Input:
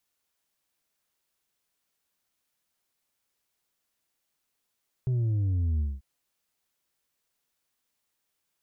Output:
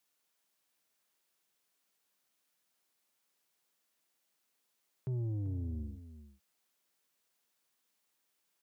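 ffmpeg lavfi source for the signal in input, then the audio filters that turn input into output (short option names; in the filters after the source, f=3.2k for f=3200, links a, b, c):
-f lavfi -i "aevalsrc='0.0631*clip((0.94-t)/0.21,0,1)*tanh(1.58*sin(2*PI*130*0.94/log(65/130)*(exp(log(65/130)*t/0.94)-1)))/tanh(1.58)':d=0.94:s=44100"
-af "highpass=160,asoftclip=type=tanh:threshold=-30.5dB,aecho=1:1:390:0.224"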